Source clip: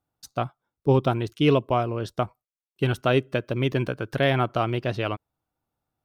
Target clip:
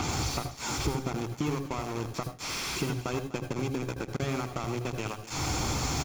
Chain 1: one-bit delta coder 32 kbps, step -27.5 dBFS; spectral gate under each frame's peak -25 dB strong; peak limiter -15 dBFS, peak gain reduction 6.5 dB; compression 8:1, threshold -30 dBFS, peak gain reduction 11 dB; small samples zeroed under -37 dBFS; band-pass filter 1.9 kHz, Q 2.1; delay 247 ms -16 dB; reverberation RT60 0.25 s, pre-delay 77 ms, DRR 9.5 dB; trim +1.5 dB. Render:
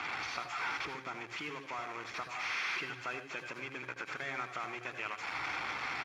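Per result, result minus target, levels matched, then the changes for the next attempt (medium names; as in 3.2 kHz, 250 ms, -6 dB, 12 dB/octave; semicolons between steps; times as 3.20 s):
2 kHz band +8.5 dB; compression: peak gain reduction -5 dB
remove: band-pass filter 1.9 kHz, Q 2.1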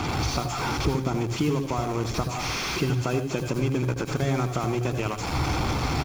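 compression: peak gain reduction -5 dB
change: compression 8:1, threshold -36 dBFS, peak gain reduction 16 dB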